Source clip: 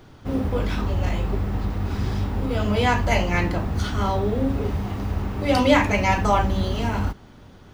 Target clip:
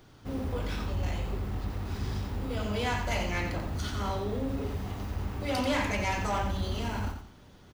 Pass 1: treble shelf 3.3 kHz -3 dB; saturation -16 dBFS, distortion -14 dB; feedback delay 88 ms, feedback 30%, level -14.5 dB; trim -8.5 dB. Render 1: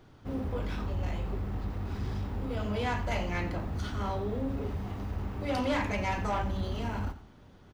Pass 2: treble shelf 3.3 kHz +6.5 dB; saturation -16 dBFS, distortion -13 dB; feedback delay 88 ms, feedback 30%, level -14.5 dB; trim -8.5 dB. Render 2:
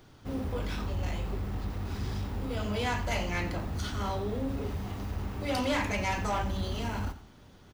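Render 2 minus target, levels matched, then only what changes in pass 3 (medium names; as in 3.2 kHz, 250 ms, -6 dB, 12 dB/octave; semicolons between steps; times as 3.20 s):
echo-to-direct -7.5 dB
change: feedback delay 88 ms, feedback 30%, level -7 dB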